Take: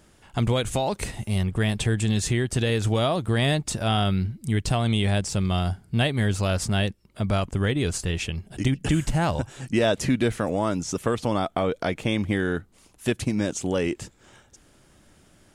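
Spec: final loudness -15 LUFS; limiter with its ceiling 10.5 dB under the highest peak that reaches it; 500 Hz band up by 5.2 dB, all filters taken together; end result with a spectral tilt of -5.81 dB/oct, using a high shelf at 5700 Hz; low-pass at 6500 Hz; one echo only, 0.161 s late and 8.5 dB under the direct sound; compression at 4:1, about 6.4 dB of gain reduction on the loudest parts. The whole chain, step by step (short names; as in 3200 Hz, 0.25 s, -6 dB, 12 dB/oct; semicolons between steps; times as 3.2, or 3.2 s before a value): LPF 6500 Hz; bell 500 Hz +6.5 dB; high shelf 5700 Hz -4.5 dB; compressor 4:1, threshold -22 dBFS; limiter -22 dBFS; echo 0.161 s -8.5 dB; gain +17 dB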